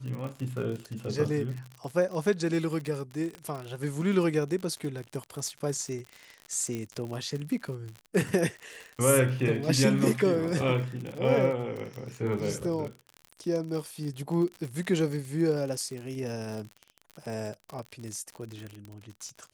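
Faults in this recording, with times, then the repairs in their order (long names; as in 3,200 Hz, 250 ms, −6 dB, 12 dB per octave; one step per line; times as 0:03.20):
surface crackle 57 per second −34 dBFS
0:03.35: click −27 dBFS
0:06.75: click −21 dBFS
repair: click removal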